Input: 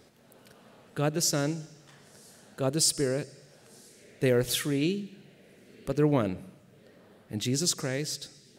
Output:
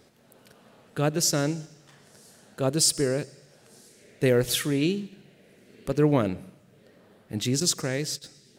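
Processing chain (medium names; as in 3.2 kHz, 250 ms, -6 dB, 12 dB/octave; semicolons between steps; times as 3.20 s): 7.60–8.24 s: gate -36 dBFS, range -9 dB; in parallel at -7.5 dB: crossover distortion -48.5 dBFS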